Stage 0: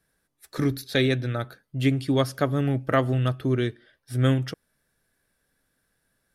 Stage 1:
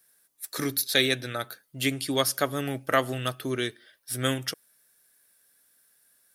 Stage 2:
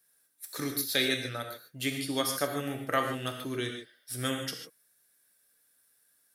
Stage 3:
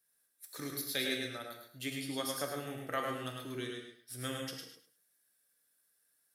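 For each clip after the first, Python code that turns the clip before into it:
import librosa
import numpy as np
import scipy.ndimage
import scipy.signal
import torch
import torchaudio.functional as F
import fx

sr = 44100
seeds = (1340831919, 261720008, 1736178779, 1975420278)

y1 = fx.riaa(x, sr, side='recording')
y2 = fx.rev_gated(y1, sr, seeds[0], gate_ms=170, shape='flat', drr_db=3.5)
y2 = y2 * 10.0 ** (-6.0 / 20.0)
y3 = fx.echo_feedback(y2, sr, ms=104, feedback_pct=23, wet_db=-4.5)
y3 = y3 * 10.0 ** (-8.0 / 20.0)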